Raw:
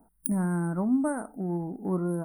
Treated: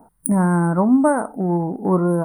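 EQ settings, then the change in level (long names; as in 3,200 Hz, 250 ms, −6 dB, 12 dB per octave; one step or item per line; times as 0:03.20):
octave-band graphic EQ 125/250/500/1,000/2,000/4,000/8,000 Hz +10/+3/+9/+11/+5/+5/+6 dB
+2.5 dB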